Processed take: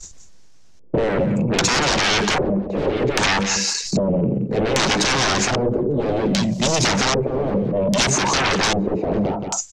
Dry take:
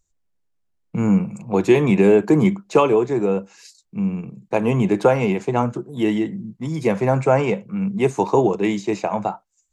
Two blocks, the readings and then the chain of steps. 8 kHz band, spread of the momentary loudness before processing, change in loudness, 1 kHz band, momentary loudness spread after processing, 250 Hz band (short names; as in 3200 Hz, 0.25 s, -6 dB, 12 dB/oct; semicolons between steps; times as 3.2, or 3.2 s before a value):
n/a, 11 LU, +0.5 dB, +1.5 dB, 5 LU, -2.0 dB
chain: in parallel at -2 dB: compressor, threshold -23 dBFS, peak gain reduction 13.5 dB; on the sum: limiter -7 dBFS, peak gain reduction 6 dB; sine folder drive 16 dB, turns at -7 dBFS; expander -33 dBFS; transient shaper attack -8 dB, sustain +7 dB; high shelf 6400 Hz +6 dB; on a send: echo 0.174 s -11 dB; on the sum: LFO low-pass square 0.63 Hz 460–5900 Hz; three-band squash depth 100%; gain -10.5 dB